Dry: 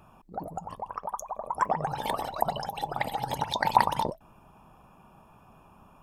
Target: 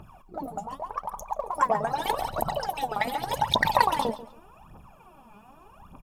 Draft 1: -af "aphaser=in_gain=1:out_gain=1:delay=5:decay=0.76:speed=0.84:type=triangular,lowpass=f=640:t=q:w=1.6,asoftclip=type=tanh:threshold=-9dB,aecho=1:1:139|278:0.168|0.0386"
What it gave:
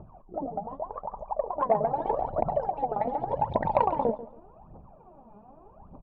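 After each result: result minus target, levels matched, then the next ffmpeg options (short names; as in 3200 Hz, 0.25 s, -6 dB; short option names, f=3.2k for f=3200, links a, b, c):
soft clip: distortion +11 dB; 500 Hz band +5.0 dB
-af "aphaser=in_gain=1:out_gain=1:delay=5:decay=0.76:speed=0.84:type=triangular,lowpass=f=640:t=q:w=1.6,asoftclip=type=tanh:threshold=-1dB,aecho=1:1:139|278:0.168|0.0386"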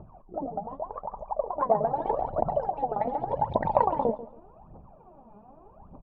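500 Hz band +5.0 dB
-af "aphaser=in_gain=1:out_gain=1:delay=5:decay=0.76:speed=0.84:type=triangular,asoftclip=type=tanh:threshold=-1dB,aecho=1:1:139|278:0.168|0.0386"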